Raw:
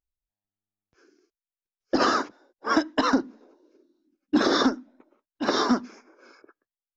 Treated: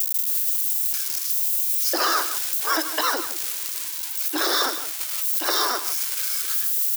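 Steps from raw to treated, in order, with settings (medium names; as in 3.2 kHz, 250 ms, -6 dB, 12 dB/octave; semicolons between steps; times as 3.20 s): zero-crossing glitches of -25 dBFS; tilt EQ +4 dB/octave; peak limiter -14.5 dBFS, peak gain reduction 10.5 dB; elliptic high-pass 320 Hz, stop band 40 dB; treble shelf 4.4 kHz -6 dB; delay 158 ms -12.5 dB; trim +8 dB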